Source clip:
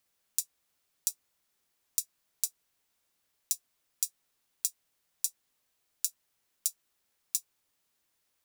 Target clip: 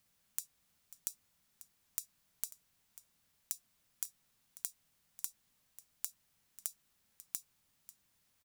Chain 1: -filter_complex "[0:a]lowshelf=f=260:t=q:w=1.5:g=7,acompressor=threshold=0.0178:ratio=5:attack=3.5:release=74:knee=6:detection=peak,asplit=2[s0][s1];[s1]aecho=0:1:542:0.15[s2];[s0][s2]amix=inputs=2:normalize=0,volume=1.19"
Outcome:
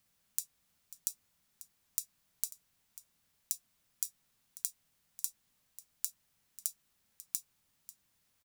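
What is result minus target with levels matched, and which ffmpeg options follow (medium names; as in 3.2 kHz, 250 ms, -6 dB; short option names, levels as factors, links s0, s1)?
compression: peak gain reduction -5 dB
-filter_complex "[0:a]lowshelf=f=260:t=q:w=1.5:g=7,acompressor=threshold=0.00841:ratio=5:attack=3.5:release=74:knee=6:detection=peak,asplit=2[s0][s1];[s1]aecho=0:1:542:0.15[s2];[s0][s2]amix=inputs=2:normalize=0,volume=1.19"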